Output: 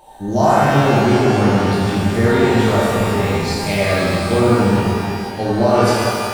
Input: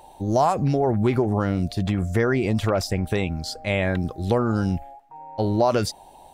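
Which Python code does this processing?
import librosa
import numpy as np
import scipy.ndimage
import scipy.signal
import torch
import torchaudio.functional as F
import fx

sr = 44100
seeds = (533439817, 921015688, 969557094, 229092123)

y = fx.cheby1_bandstop(x, sr, low_hz=1700.0, high_hz=9000.0, order=2, at=(2.66, 3.2))
y = fx.rev_shimmer(y, sr, seeds[0], rt60_s=2.3, semitones=12, shimmer_db=-8, drr_db=-8.0)
y = y * librosa.db_to_amplitude(-1.5)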